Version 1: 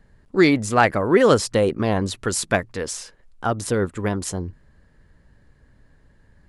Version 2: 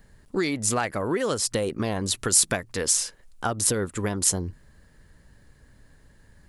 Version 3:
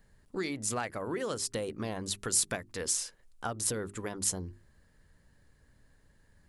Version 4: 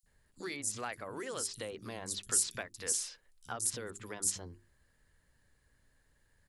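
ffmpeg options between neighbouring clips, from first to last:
-af "acompressor=threshold=0.0708:ratio=8,crystalizer=i=2.5:c=0"
-af "bandreject=f=50:t=h:w=6,bandreject=f=100:t=h:w=6,bandreject=f=150:t=h:w=6,bandreject=f=200:t=h:w=6,bandreject=f=250:t=h:w=6,bandreject=f=300:t=h:w=6,bandreject=f=350:t=h:w=6,bandreject=f=400:t=h:w=6,volume=0.376"
-filter_complex "[0:a]tiltshelf=f=1400:g=-3.5,acrossover=split=190|5100[s0][s1][s2];[s0]adelay=30[s3];[s1]adelay=60[s4];[s3][s4][s2]amix=inputs=3:normalize=0,volume=0.631"

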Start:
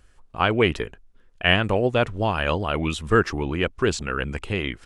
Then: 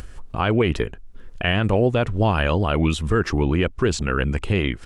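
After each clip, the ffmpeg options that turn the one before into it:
-filter_complex "[0:a]lowshelf=f=370:g=6.5,asplit=2[s0][s1];[s1]acompressor=mode=upward:threshold=0.1:ratio=2.5,volume=1.12[s2];[s0][s2]amix=inputs=2:normalize=0,alimiter=level_in=1.5:limit=0.891:release=50:level=0:latency=1,volume=0.398"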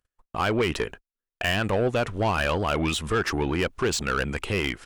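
-filter_complex "[0:a]asplit=2[s0][s1];[s1]highpass=f=720:p=1,volume=5.62,asoftclip=type=tanh:threshold=0.355[s2];[s0][s2]amix=inputs=2:normalize=0,lowpass=f=2500:p=1,volume=0.501,aemphasis=mode=production:type=50fm,agate=range=0.00501:threshold=0.0224:ratio=16:detection=peak,volume=0.531"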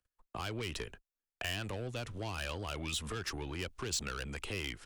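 -filter_complex "[0:a]acrossover=split=150|3000[s0][s1][s2];[s1]acompressor=threshold=0.02:ratio=6[s3];[s0][s3][s2]amix=inputs=3:normalize=0,acrossover=split=190|1100[s4][s5][s6];[s4]asoftclip=type=hard:threshold=0.0141[s7];[s7][s5][s6]amix=inputs=3:normalize=0,volume=0.501"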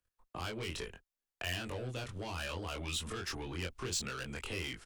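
-filter_complex "[0:a]asplit=2[s0][s1];[s1]adelay=23,volume=0.794[s2];[s0][s2]amix=inputs=2:normalize=0,volume=0.75"

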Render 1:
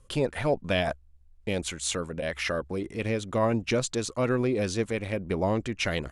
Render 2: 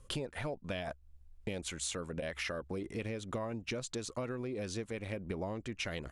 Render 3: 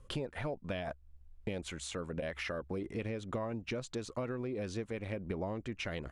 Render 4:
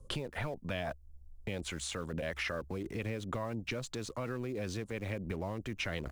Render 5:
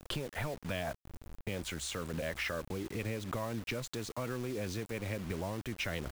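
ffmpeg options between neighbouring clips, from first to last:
-af "acompressor=threshold=0.0178:ratio=12"
-af "highshelf=f=4400:g=-10.5,volume=1.12"
-filter_complex "[0:a]acrossover=split=130|950|4800[s0][s1][s2][s3];[s1]alimiter=level_in=4.22:limit=0.0631:level=0:latency=1:release=15,volume=0.237[s4];[s2]aeval=exprs='val(0)*gte(abs(val(0)),0.00119)':c=same[s5];[s0][s4][s5][s3]amix=inputs=4:normalize=0,volume=1.5"
-af "acrusher=bits=7:mix=0:aa=0.000001"

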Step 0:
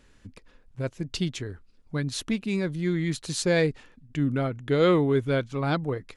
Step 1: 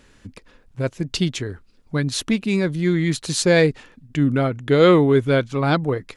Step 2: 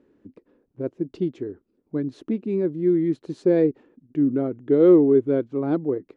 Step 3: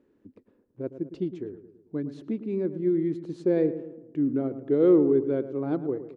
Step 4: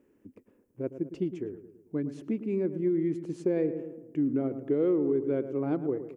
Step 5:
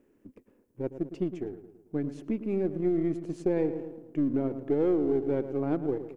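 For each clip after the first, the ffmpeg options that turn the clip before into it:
-af "lowshelf=f=67:g=-6,volume=2.37"
-af "bandpass=f=340:t=q:w=2.7:csg=0,volume=1.41"
-filter_complex "[0:a]asplit=2[s0][s1];[s1]adelay=110,lowpass=f=1500:p=1,volume=0.266,asplit=2[s2][s3];[s3]adelay=110,lowpass=f=1500:p=1,volume=0.52,asplit=2[s4][s5];[s5]adelay=110,lowpass=f=1500:p=1,volume=0.52,asplit=2[s6][s7];[s7]adelay=110,lowpass=f=1500:p=1,volume=0.52,asplit=2[s8][s9];[s9]adelay=110,lowpass=f=1500:p=1,volume=0.52,asplit=2[s10][s11];[s11]adelay=110,lowpass=f=1500:p=1,volume=0.52[s12];[s0][s2][s4][s6][s8][s10][s12]amix=inputs=7:normalize=0,volume=0.562"
-af "acompressor=threshold=0.0708:ratio=6,aexciter=amount=1:drive=6.1:freq=2100"
-af "aeval=exprs='if(lt(val(0),0),0.708*val(0),val(0))':c=same,volume=1.19"

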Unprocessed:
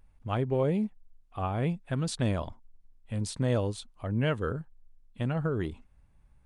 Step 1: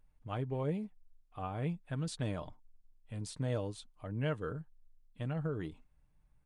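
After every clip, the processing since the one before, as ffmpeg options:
-af "aecho=1:1:6.6:0.38,volume=0.376"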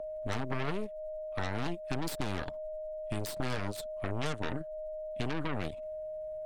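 -filter_complex "[0:a]aeval=exprs='0.0631*(cos(1*acos(clip(val(0)/0.0631,-1,1)))-cos(1*PI/2))+0.00562*(cos(3*acos(clip(val(0)/0.0631,-1,1)))-cos(3*PI/2))+0.02*(cos(8*acos(clip(val(0)/0.0631,-1,1)))-cos(8*PI/2))':c=same,aeval=exprs='val(0)+0.00631*sin(2*PI*620*n/s)':c=same,acrossover=split=270|1100[s0][s1][s2];[s0]acompressor=threshold=0.00794:ratio=4[s3];[s1]acompressor=threshold=0.00447:ratio=4[s4];[s2]acompressor=threshold=0.00447:ratio=4[s5];[s3][s4][s5]amix=inputs=3:normalize=0,volume=2.51"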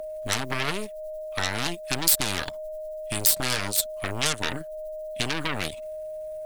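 -af "crystalizer=i=9.5:c=0,volume=1.26"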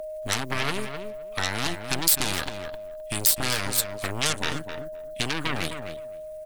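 -filter_complex "[0:a]asplit=2[s0][s1];[s1]adelay=259,lowpass=f=2200:p=1,volume=0.422,asplit=2[s2][s3];[s3]adelay=259,lowpass=f=2200:p=1,volume=0.16,asplit=2[s4][s5];[s5]adelay=259,lowpass=f=2200:p=1,volume=0.16[s6];[s0][s2][s4][s6]amix=inputs=4:normalize=0"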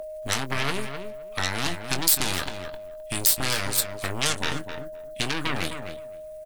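-filter_complex "[0:a]asplit=2[s0][s1];[s1]adelay=22,volume=0.282[s2];[s0][s2]amix=inputs=2:normalize=0"

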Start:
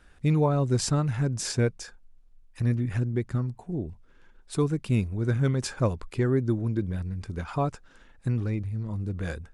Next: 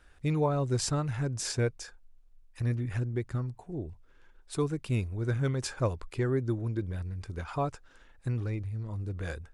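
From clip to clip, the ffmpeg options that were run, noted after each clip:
-af "equalizer=f=200:w=1.8:g=-7.5,volume=0.75"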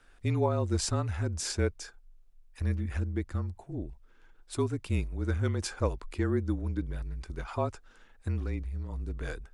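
-af "afreqshift=-34"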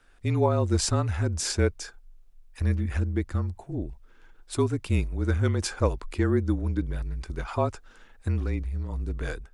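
-af "dynaudnorm=f=120:g=5:m=1.78"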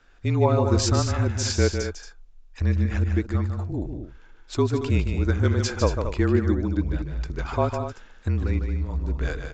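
-af "aecho=1:1:151.6|227.4:0.447|0.316,aresample=16000,aresample=44100,volume=1.33"

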